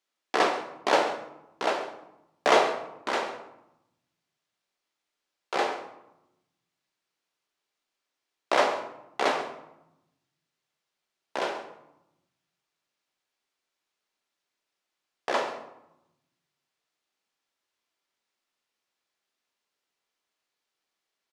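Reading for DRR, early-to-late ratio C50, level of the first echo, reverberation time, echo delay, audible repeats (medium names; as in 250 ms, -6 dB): 4.5 dB, 8.5 dB, -15.5 dB, 0.85 s, 133 ms, 1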